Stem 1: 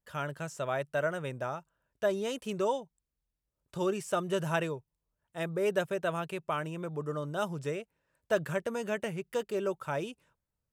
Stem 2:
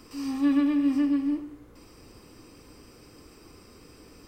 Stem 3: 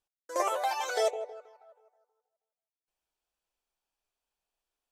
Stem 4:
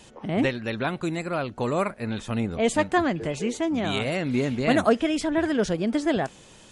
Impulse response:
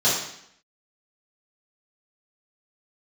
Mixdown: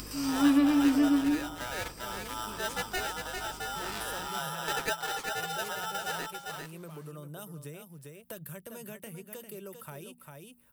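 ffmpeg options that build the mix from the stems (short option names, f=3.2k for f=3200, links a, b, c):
-filter_complex "[0:a]bandreject=f=60:t=h:w=6,bandreject=f=120:t=h:w=6,bandreject=f=180:t=h:w=6,bandreject=f=240:t=h:w=6,acrossover=split=230|3000[a][b][c];[b]acompressor=threshold=-42dB:ratio=3[d];[a][d][c]amix=inputs=3:normalize=0,aexciter=amount=8:drive=5.2:freq=9.5k,volume=-8.5dB,asplit=2[e][f];[f]volume=-9.5dB[g];[1:a]highshelf=f=4.6k:g=11.5,aeval=exprs='val(0)+0.00316*(sin(2*PI*50*n/s)+sin(2*PI*2*50*n/s)/2+sin(2*PI*3*50*n/s)/3+sin(2*PI*4*50*n/s)/4+sin(2*PI*5*50*n/s)/5)':c=same,volume=-0.5dB[h];[2:a]volume=-13.5dB[i];[3:a]aeval=exprs='val(0)*sgn(sin(2*PI*1100*n/s))':c=same,volume=-12.5dB,asplit=2[j][k];[k]volume=-5.5dB[l];[g][l]amix=inputs=2:normalize=0,aecho=0:1:398:1[m];[e][h][i][j][m]amix=inputs=5:normalize=0,acompressor=mode=upward:threshold=-37dB:ratio=2.5"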